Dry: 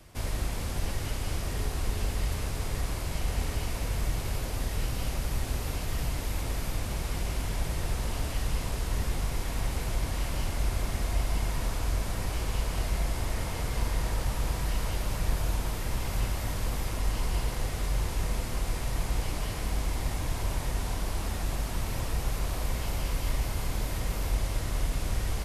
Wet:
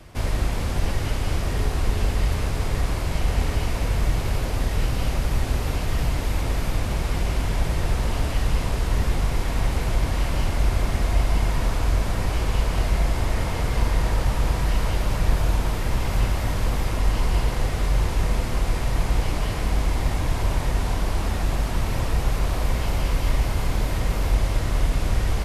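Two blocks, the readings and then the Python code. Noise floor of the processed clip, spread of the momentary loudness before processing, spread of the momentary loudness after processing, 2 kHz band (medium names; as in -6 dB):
-27 dBFS, 2 LU, 2 LU, +7.0 dB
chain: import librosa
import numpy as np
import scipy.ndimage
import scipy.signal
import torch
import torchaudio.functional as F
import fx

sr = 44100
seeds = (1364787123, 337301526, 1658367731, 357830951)

y = fx.high_shelf(x, sr, hz=5400.0, db=-9.0)
y = y * librosa.db_to_amplitude(8.0)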